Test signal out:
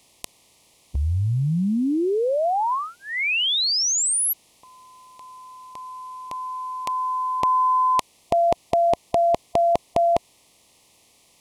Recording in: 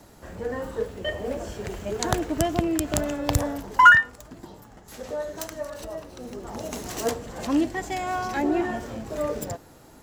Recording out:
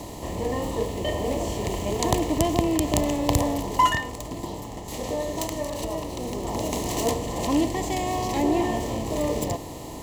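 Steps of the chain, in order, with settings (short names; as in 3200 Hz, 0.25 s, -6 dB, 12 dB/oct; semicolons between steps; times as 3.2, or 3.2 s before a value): per-bin compression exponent 0.6; Butterworth band-stop 1500 Hz, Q 1.5; gain -1.5 dB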